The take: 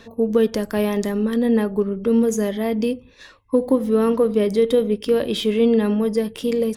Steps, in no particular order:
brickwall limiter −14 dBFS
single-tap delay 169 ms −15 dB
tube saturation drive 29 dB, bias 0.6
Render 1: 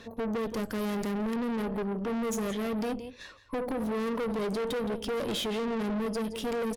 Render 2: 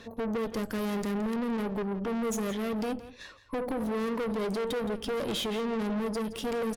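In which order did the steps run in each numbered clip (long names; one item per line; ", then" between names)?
brickwall limiter, then single-tap delay, then tube saturation
brickwall limiter, then tube saturation, then single-tap delay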